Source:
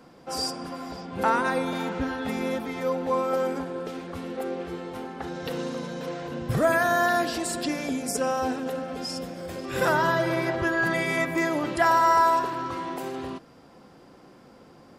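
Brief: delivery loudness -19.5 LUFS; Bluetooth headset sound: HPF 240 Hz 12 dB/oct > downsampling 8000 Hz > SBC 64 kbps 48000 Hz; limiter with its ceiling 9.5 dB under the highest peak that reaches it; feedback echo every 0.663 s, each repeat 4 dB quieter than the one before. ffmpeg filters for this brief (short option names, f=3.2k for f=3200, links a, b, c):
-af "alimiter=limit=-19dB:level=0:latency=1,highpass=240,aecho=1:1:663|1326|1989|2652|3315|3978|4641|5304|5967:0.631|0.398|0.25|0.158|0.0994|0.0626|0.0394|0.0249|0.0157,aresample=8000,aresample=44100,volume=9dB" -ar 48000 -c:a sbc -b:a 64k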